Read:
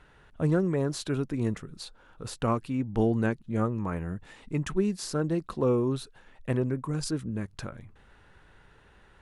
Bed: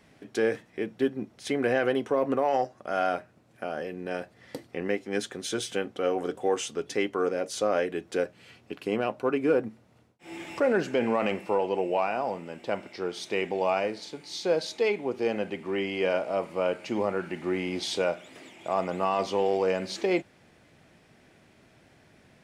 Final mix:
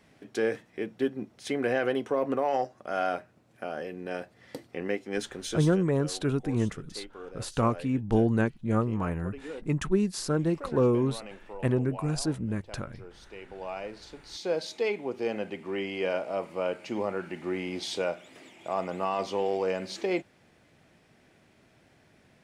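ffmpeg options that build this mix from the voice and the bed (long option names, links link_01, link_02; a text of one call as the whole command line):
ffmpeg -i stem1.wav -i stem2.wav -filter_complex "[0:a]adelay=5150,volume=1.5dB[link_01];[1:a]volume=11.5dB,afade=type=out:start_time=5.46:duration=0.36:silence=0.188365,afade=type=in:start_time=13.43:duration=1.21:silence=0.211349[link_02];[link_01][link_02]amix=inputs=2:normalize=0" out.wav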